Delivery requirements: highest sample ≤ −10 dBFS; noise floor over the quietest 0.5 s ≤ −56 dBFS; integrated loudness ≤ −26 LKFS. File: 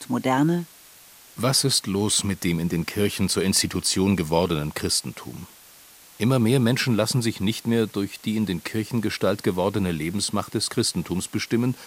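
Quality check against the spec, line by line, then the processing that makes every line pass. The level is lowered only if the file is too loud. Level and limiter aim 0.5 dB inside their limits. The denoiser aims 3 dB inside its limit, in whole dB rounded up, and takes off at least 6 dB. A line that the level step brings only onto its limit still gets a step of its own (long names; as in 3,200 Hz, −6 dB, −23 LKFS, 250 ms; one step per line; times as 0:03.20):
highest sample −6.0 dBFS: out of spec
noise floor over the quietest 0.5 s −49 dBFS: out of spec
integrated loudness −23.5 LKFS: out of spec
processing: broadband denoise 7 dB, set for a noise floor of −49 dBFS
level −3 dB
brickwall limiter −10.5 dBFS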